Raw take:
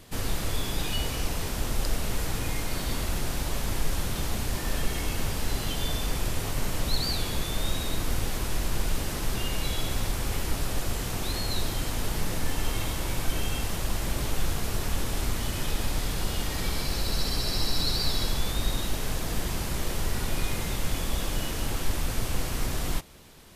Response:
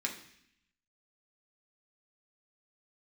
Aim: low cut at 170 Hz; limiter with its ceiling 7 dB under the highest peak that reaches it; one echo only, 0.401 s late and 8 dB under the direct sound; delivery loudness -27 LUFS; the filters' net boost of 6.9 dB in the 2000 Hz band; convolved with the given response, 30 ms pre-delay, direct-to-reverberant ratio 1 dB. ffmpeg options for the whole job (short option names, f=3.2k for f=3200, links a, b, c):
-filter_complex "[0:a]highpass=170,equalizer=f=2k:t=o:g=8.5,alimiter=limit=-22.5dB:level=0:latency=1,aecho=1:1:401:0.398,asplit=2[a][b];[1:a]atrim=start_sample=2205,adelay=30[c];[b][c]afir=irnorm=-1:irlink=0,volume=-4.5dB[d];[a][d]amix=inputs=2:normalize=0,volume=1dB"